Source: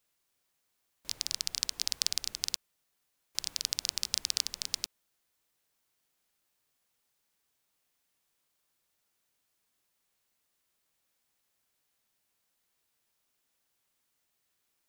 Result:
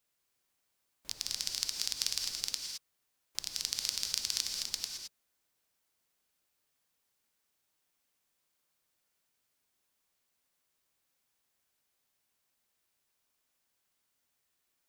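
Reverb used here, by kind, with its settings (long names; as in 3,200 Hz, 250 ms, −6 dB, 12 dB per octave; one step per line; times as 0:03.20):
reverb whose tail is shaped and stops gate 240 ms rising, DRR 3 dB
level −3 dB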